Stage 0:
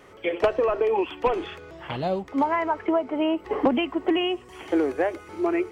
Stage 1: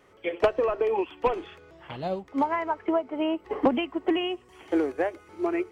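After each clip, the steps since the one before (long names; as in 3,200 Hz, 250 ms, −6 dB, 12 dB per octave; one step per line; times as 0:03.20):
expander for the loud parts 1.5 to 1, over −33 dBFS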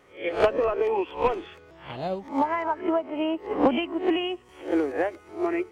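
peak hold with a rise ahead of every peak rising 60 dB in 0.33 s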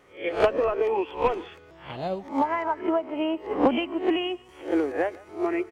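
far-end echo of a speakerphone 150 ms, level −22 dB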